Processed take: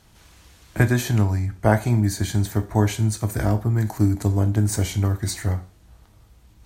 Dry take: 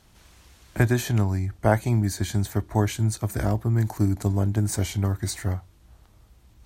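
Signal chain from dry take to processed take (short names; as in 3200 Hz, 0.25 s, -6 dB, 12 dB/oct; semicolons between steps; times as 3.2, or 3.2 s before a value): two-slope reverb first 0.39 s, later 1.8 s, from -28 dB, DRR 8.5 dB; gain +2 dB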